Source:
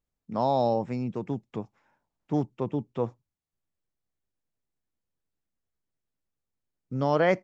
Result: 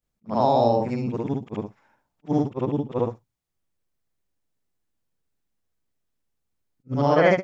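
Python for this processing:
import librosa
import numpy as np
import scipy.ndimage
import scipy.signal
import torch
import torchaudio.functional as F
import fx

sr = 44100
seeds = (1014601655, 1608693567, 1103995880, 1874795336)

y = fx.frame_reverse(x, sr, frame_ms=155.0)
y = fx.attack_slew(y, sr, db_per_s=480.0)
y = y * librosa.db_to_amplitude(8.5)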